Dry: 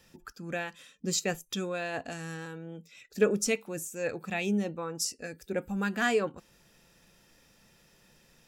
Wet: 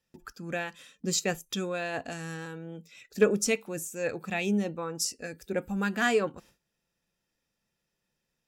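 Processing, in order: Chebyshev shaper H 3 -27 dB, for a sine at -13.5 dBFS; gate with hold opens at -50 dBFS; trim +2.5 dB

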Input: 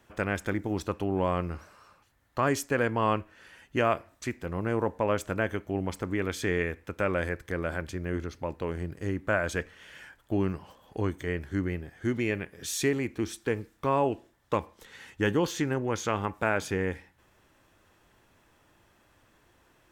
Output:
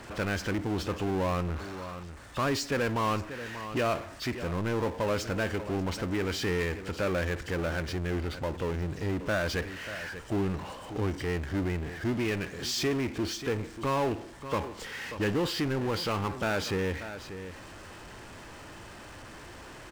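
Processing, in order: knee-point frequency compression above 2.6 kHz 1.5:1; delay 587 ms -22 dB; power-law waveshaper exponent 0.5; trim -7 dB

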